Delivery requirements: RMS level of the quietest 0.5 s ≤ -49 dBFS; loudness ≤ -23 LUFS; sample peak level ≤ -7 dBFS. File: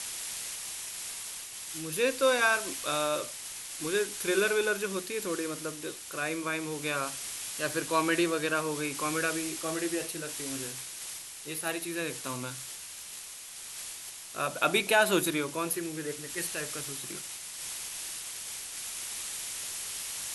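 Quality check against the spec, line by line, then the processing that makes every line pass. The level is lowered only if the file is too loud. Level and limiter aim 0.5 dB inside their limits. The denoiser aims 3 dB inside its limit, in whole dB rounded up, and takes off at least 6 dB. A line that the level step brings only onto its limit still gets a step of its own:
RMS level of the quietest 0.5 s -44 dBFS: fail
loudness -31.5 LUFS: OK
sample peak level -10.0 dBFS: OK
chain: denoiser 8 dB, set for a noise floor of -44 dBFS

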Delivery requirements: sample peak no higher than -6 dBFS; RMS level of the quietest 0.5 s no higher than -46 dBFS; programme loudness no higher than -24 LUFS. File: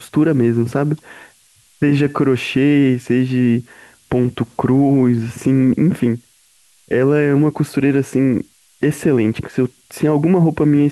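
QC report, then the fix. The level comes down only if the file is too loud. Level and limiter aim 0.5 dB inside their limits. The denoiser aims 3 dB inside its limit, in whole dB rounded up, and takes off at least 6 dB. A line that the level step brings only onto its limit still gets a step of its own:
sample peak -5.0 dBFS: fail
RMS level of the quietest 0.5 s -54 dBFS: OK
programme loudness -16.5 LUFS: fail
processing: gain -8 dB

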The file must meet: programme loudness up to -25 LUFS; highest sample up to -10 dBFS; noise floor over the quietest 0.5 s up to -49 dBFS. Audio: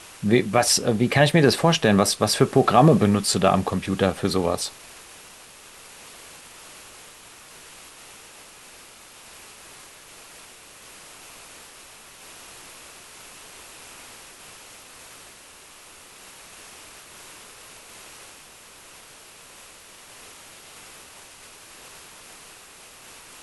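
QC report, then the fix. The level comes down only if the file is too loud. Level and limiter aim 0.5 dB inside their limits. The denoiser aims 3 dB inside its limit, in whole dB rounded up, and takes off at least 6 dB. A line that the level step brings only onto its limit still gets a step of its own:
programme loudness -19.5 LUFS: fail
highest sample -4.0 dBFS: fail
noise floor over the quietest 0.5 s -47 dBFS: fail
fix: gain -6 dB; limiter -10.5 dBFS

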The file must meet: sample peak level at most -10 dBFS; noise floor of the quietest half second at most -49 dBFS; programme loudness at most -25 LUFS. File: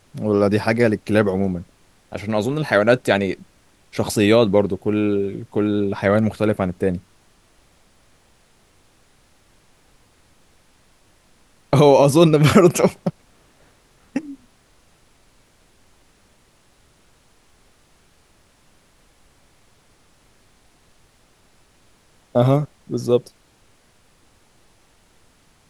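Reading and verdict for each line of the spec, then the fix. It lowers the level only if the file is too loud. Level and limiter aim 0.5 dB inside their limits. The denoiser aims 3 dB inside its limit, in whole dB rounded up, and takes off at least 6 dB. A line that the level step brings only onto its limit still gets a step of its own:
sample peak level -2.5 dBFS: fail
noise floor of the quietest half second -56 dBFS: OK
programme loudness -18.5 LUFS: fail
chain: gain -7 dB; limiter -10.5 dBFS

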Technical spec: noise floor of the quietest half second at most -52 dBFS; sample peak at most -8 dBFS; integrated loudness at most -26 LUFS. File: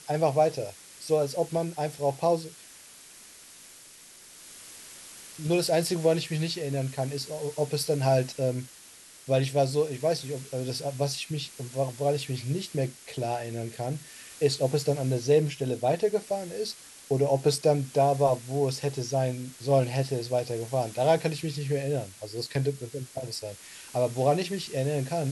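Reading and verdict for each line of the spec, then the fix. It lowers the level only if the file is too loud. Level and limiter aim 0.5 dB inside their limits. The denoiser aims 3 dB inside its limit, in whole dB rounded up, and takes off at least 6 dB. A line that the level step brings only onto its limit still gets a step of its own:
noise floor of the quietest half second -51 dBFS: fail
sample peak -10.5 dBFS: OK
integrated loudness -28.0 LUFS: OK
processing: denoiser 6 dB, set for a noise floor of -51 dBFS

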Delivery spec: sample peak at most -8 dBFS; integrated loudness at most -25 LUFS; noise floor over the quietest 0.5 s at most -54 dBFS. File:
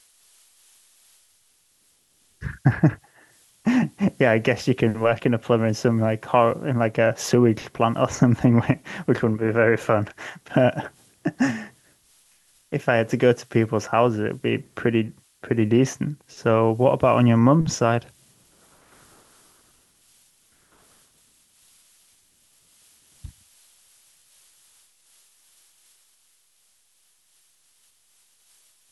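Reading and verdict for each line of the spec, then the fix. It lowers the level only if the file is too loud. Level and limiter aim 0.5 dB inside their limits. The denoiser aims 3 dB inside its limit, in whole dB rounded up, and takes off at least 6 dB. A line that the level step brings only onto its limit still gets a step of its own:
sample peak -4.5 dBFS: fail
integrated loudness -21.5 LUFS: fail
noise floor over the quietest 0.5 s -63 dBFS: OK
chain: gain -4 dB

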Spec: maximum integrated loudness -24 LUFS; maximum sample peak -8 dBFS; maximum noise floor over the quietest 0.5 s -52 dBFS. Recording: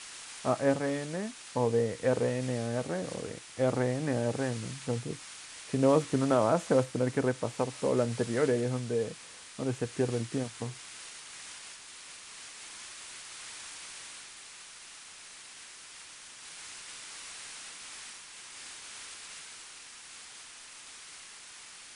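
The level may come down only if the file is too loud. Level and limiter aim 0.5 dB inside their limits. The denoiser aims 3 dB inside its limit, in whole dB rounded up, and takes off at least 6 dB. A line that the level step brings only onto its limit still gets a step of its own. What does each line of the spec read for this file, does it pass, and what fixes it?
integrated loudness -32.5 LUFS: OK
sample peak -12.0 dBFS: OK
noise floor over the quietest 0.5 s -49 dBFS: fail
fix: denoiser 6 dB, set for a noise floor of -49 dBFS

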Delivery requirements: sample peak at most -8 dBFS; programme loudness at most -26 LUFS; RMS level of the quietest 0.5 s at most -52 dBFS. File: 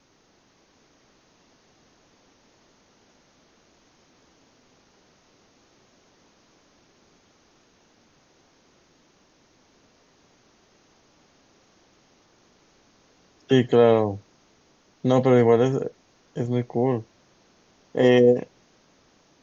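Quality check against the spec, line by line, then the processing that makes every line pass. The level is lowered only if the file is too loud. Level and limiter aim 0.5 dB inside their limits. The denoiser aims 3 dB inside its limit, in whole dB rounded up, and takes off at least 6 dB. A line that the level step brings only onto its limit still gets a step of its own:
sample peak -5.5 dBFS: fail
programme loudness -21.0 LUFS: fail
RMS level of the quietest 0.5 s -62 dBFS: OK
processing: gain -5.5 dB

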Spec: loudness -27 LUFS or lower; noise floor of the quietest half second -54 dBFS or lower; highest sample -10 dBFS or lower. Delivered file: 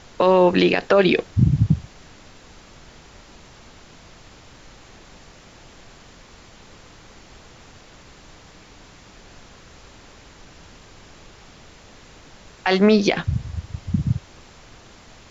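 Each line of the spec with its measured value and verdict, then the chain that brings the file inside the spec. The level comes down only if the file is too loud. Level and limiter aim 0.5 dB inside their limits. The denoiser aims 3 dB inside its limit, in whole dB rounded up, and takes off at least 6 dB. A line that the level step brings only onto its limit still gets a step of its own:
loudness -19.5 LUFS: fail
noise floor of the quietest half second -46 dBFS: fail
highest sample -5.0 dBFS: fail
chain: denoiser 6 dB, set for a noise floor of -46 dBFS; gain -8 dB

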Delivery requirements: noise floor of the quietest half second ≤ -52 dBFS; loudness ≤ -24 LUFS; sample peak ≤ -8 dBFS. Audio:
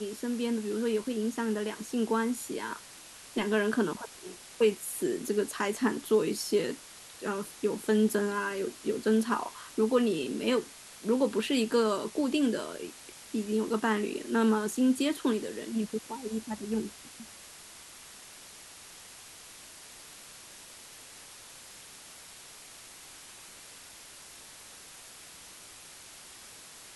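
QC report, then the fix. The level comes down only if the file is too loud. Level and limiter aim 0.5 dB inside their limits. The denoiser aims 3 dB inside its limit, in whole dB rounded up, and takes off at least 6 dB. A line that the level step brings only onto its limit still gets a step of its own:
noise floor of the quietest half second -50 dBFS: fail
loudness -30.5 LUFS: OK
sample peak -14.0 dBFS: OK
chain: denoiser 6 dB, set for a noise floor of -50 dBFS

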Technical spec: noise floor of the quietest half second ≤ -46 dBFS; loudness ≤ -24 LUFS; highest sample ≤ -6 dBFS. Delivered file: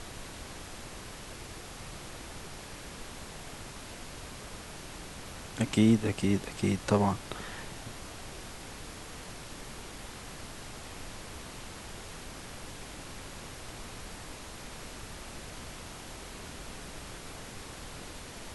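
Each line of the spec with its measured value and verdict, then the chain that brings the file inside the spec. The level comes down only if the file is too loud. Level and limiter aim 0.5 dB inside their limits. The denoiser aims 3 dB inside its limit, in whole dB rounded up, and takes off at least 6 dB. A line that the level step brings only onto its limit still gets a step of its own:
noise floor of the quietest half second -44 dBFS: fail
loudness -37.0 LUFS: OK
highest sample -11.0 dBFS: OK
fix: denoiser 6 dB, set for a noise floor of -44 dBFS

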